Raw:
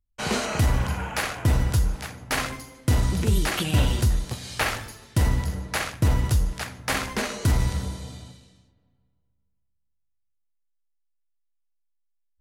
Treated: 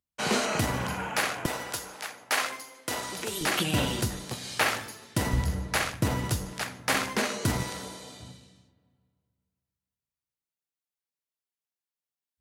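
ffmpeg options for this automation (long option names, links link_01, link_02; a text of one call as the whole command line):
ffmpeg -i in.wav -af "asetnsamples=nb_out_samples=441:pad=0,asendcmd='1.46 highpass f 510;3.41 highpass f 170;5.33 highpass f 51;6.01 highpass f 150;7.63 highpass f 320;8.2 highpass f 99',highpass=170" out.wav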